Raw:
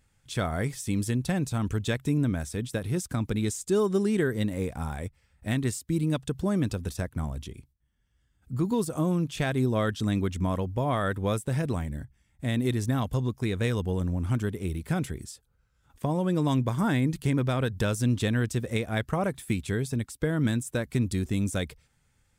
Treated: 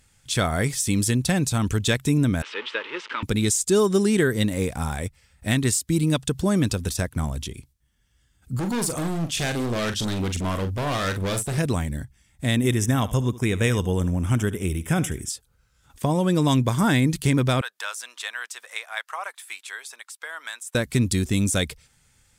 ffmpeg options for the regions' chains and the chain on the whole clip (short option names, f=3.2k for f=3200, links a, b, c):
-filter_complex "[0:a]asettb=1/sr,asplit=3[a][b][c];[a]atrim=end=2.424[d];[b]atrim=start=2.42:end=3.23,asetpts=PTS-STARTPTS,afade=t=in:d=0.004:c=qsin,afade=t=out:st=0.806:d=0.004:c=qsin,aeval=exprs='val(0)+0.5*0.0178*sgn(val(0))':c=same,asuperstop=centerf=730:order=4:qfactor=3.6,highpass=f=440:w=0.5412,highpass=f=440:w=1.3066,equalizer=f=580:t=q:w=4:g=-9,equalizer=f=890:t=q:w=4:g=4,equalizer=f=1.3k:t=q:w=4:g=3,equalizer=f=2k:t=q:w=4:g=3,equalizer=f=2.9k:t=q:w=4:g=6,lowpass=f=3.2k:w=0.5412,lowpass=f=3.2k:w=1.3066[e];[c]atrim=start=3.226[f];[d][e]acrossfade=d=0.004:c1=hsin:c2=qsin[g];[g][f]acrossfade=d=0.004:c1=qsin:c2=hsin,asettb=1/sr,asplit=3[h][i][j];[h]atrim=end=8.594[k];[i]atrim=start=8.59:end=11.58,asetpts=PTS-STARTPTS,afade=t=in:d=0.004:c=qsin,afade=t=out:st=2.986:d=0.004:c=qsin,asoftclip=type=hard:threshold=-29.5dB,asplit=2[l][m];[m]adelay=42,volume=-8.5dB[n];[l][n]amix=inputs=2:normalize=0,atrim=end_sample=131859[o];[j]atrim=start=11.576[p];[k][o]acrossfade=d=0.004:c1=hsin:c2=qsin[q];[q][p]acrossfade=d=0.004:c1=qsin:c2=hsin,asettb=1/sr,asplit=3[r][s][t];[r]atrim=end=12.554[u];[s]atrim=start=12.55:end=15.3,asetpts=PTS-STARTPTS,afade=t=in:d=0.004:c=qsin,afade=t=out:st=2.746:d=0.004:c=qsin,asuperstop=centerf=4300:order=4:qfactor=2.6,aecho=1:1:73:0.141,atrim=end_sample=121275[v];[t]atrim=start=15.296[w];[u][v]acrossfade=d=0.004:c1=hsin:c2=qsin[x];[x][w]acrossfade=d=0.004:c1=qsin:c2=hsin,asettb=1/sr,asplit=3[y][z][aa];[y]atrim=end=17.614[ab];[z]atrim=start=17.61:end=20.75,asetpts=PTS-STARTPTS,afade=t=in:d=0.004:c=qsin,afade=t=out:st=3.136:d=0.004:c=qsin,highpass=f=930:w=0.5412,highpass=f=930:w=1.3066,highshelf=f=2.3k:g=-11.5[ac];[aa]atrim=start=20.746[ad];[ab][ac]acrossfade=d=0.004:c1=hsin:c2=qsin[ae];[ae][ad]acrossfade=d=0.004:c1=qsin:c2=hsin,equalizer=f=7.4k:w=0.31:g=8,acontrast=28"